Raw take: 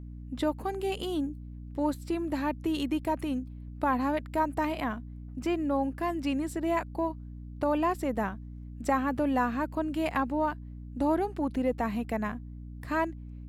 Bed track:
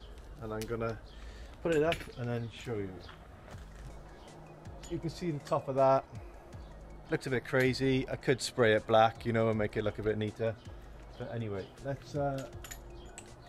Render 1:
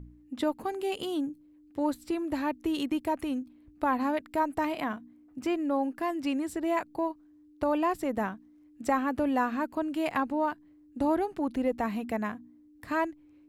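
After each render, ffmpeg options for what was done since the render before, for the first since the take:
ffmpeg -i in.wav -af "bandreject=frequency=60:width_type=h:width=4,bandreject=frequency=120:width_type=h:width=4,bandreject=frequency=180:width_type=h:width=4,bandreject=frequency=240:width_type=h:width=4" out.wav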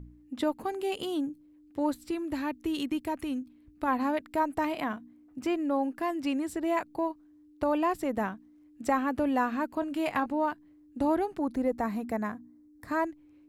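ffmpeg -i in.wav -filter_complex "[0:a]asettb=1/sr,asplit=3[link_01][link_02][link_03];[link_01]atrim=end=2.074[link_04];[link_02]atrim=start=2.07:end=3.88,asetpts=PTS-STARTPTS,afade=type=in:duration=0.004:curve=qsin,afade=type=out:start_time=1.806:duration=0.004:curve=qsin,equalizer=frequency=690:width_type=o:width=1.5:gain=-5[link_05];[link_03]atrim=start=3.876[link_06];[link_04][link_05]acrossfade=duration=0.004:curve1=hsin:curve2=qsin[link_07];[link_07][link_06]acrossfade=duration=0.004:curve1=qsin:curve2=hsin,asettb=1/sr,asplit=3[link_08][link_09][link_10];[link_08]atrim=end=9.804[link_11];[link_09]atrim=start=9.8:end=10.26,asetpts=PTS-STARTPTS,afade=type=in:duration=0.004:curve=qsin,afade=type=out:start_time=0.456:duration=0.004:curve=qsin,asplit=2[link_12][link_13];[link_13]adelay=21,volume=-10.5dB[link_14];[link_12][link_14]amix=inputs=2:normalize=0,atrim=end_sample=20286[link_15];[link_10]atrim=start=10.256[link_16];[link_11][link_15]acrossfade=duration=0.004:curve1=hsin:curve2=qsin[link_17];[link_17][link_16]acrossfade=duration=0.004:curve1=qsin:curve2=hsin,asettb=1/sr,asplit=3[link_18][link_19][link_20];[link_18]atrim=end=11.374[link_21];[link_19]atrim=start=11.37:end=13.07,asetpts=PTS-STARTPTS,afade=type=in:duration=0.004:curve=qsin,afade=type=out:start_time=1.696:duration=0.004:curve=qsin,equalizer=frequency=2900:width=2.5:gain=-11.5[link_22];[link_20]atrim=start=13.066[link_23];[link_21][link_22]acrossfade=duration=0.004:curve1=hsin:curve2=qsin[link_24];[link_24][link_23]acrossfade=duration=0.004:curve1=qsin:curve2=hsin" out.wav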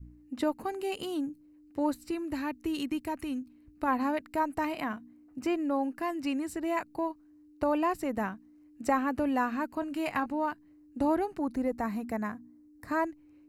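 ffmpeg -i in.wav -af "bandreject=frequency=3400:width=6.1,adynamicequalizer=threshold=0.00794:dfrequency=520:dqfactor=0.83:tfrequency=520:tqfactor=0.83:attack=5:release=100:ratio=0.375:range=2:mode=cutabove:tftype=bell" out.wav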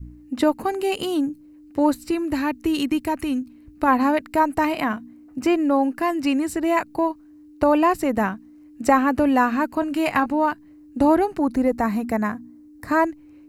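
ffmpeg -i in.wav -af "volume=10.5dB" out.wav

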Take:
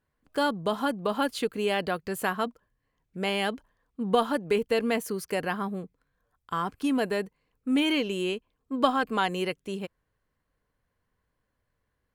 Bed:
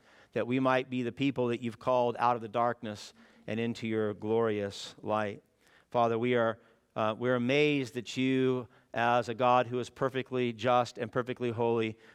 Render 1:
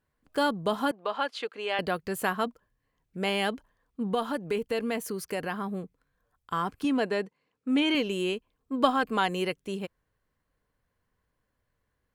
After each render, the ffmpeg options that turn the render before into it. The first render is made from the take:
ffmpeg -i in.wav -filter_complex "[0:a]asettb=1/sr,asplit=3[link_01][link_02][link_03];[link_01]atrim=end=0.914[link_04];[link_02]atrim=start=0.91:end=1.79,asetpts=PTS-STARTPTS,afade=type=in:duration=0.004:curve=qsin,afade=type=out:start_time=0.876:duration=0.004:curve=qsin,highpass=580,lowpass=4300[link_05];[link_03]atrim=start=1.786[link_06];[link_04][link_05]acrossfade=duration=0.004:curve1=hsin:curve2=qsin[link_07];[link_07][link_06]acrossfade=duration=0.004:curve1=qsin:curve2=hsin,asettb=1/sr,asplit=3[link_08][link_09][link_10];[link_08]atrim=end=4.074[link_11];[link_09]atrim=start=4.07:end=5.69,asetpts=PTS-STARTPTS,afade=type=in:duration=0.004:curve=qsin,afade=type=out:start_time=1.616:duration=0.004:curve=qsin,acompressor=threshold=-32dB:ratio=1.5:attack=3.2:release=140:knee=1:detection=peak[link_12];[link_10]atrim=start=5.686[link_13];[link_11][link_12]acrossfade=duration=0.004:curve1=hsin:curve2=qsin[link_14];[link_14][link_13]acrossfade=duration=0.004:curve1=qsin:curve2=hsin,asettb=1/sr,asplit=3[link_15][link_16][link_17];[link_15]atrim=end=6.844[link_18];[link_16]atrim=start=6.84:end=7.95,asetpts=PTS-STARTPTS,afade=type=in:duration=0.004:curve=qsin,afade=type=out:start_time=1.106:duration=0.004:curve=qsin,highpass=170,lowpass=6700[link_19];[link_17]atrim=start=7.946[link_20];[link_18][link_19]acrossfade=duration=0.004:curve1=hsin:curve2=qsin[link_21];[link_21][link_20]acrossfade=duration=0.004:curve1=qsin:curve2=hsin" out.wav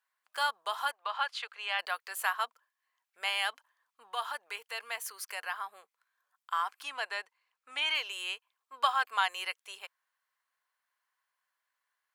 ffmpeg -i in.wav -af "highpass=frequency=890:width=0.5412,highpass=frequency=890:width=1.3066" out.wav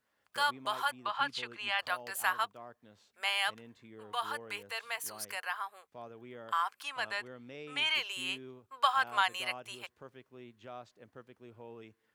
ffmpeg -i in.wav -i bed.wav -filter_complex "[1:a]volume=-20.5dB[link_01];[0:a][link_01]amix=inputs=2:normalize=0" out.wav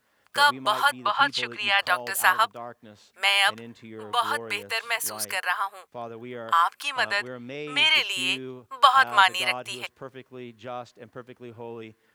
ffmpeg -i in.wav -af "volume=11dB" out.wav

